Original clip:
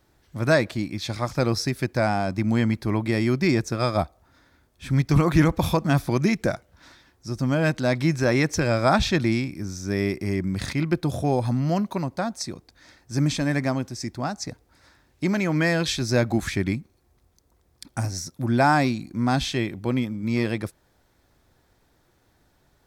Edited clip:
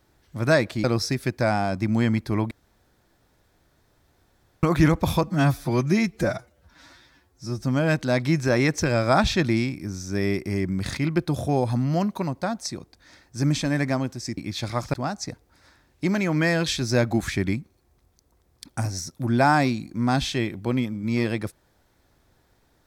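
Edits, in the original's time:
0:00.84–0:01.40: move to 0:14.13
0:03.07–0:05.19: fill with room tone
0:05.79–0:07.40: time-stretch 1.5×

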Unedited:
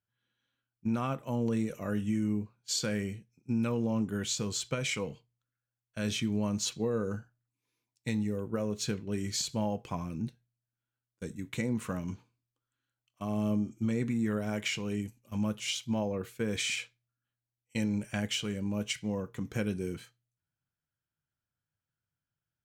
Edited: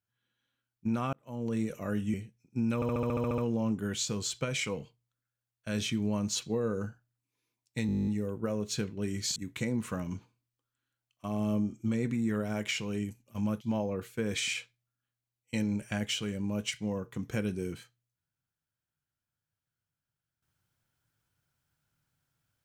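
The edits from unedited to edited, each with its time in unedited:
0:01.13–0:01.63: fade in
0:02.14–0:03.07: remove
0:03.68: stutter 0.07 s, 10 plays
0:08.17: stutter 0.02 s, 11 plays
0:09.46–0:11.33: remove
0:15.58–0:15.83: remove

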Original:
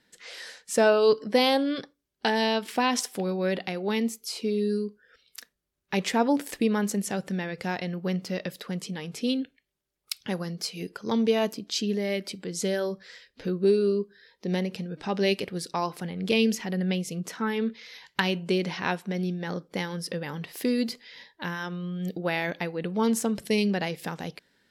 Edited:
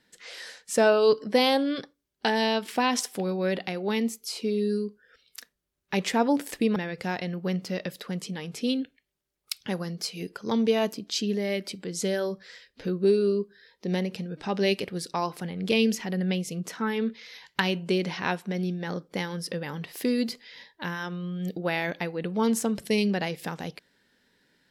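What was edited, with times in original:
0:06.76–0:07.36: remove

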